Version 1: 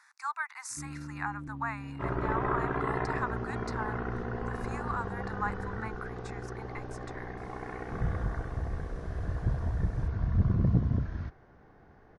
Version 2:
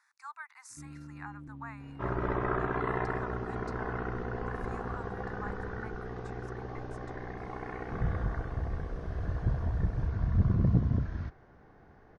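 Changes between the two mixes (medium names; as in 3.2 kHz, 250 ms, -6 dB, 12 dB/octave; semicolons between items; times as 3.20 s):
speech -10.0 dB; first sound -5.0 dB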